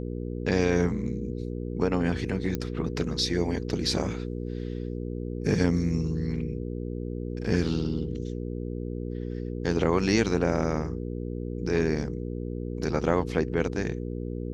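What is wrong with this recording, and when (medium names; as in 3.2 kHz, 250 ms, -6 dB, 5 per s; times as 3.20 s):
hum 60 Hz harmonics 8 -33 dBFS
2.55 s: pop -16 dBFS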